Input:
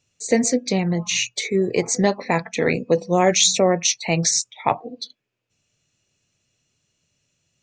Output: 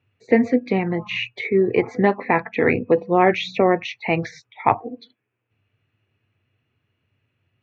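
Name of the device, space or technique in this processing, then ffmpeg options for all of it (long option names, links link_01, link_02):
bass cabinet: -af "highpass=87,equalizer=frequency=99:width_type=q:width=4:gain=10,equalizer=frequency=170:width_type=q:width=4:gain=-9,equalizer=frequency=580:width_type=q:width=4:gain=-7,lowpass=frequency=2400:width=0.5412,lowpass=frequency=2400:width=1.3066,volume=4dB"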